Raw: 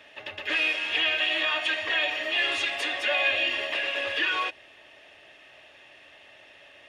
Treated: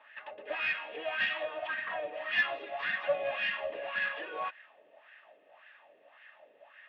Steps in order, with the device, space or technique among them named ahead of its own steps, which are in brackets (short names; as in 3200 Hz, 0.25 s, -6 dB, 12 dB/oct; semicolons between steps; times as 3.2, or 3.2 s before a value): wah-wah guitar rig (wah 1.8 Hz 430–1700 Hz, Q 3.9; tube stage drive 24 dB, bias 0.35; speaker cabinet 92–4100 Hz, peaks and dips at 100 Hz -5 dB, 200 Hz +7 dB, 370 Hz -8 dB); 1.67–2.14 high shelf 2800 Hz -10 dB; gain +6 dB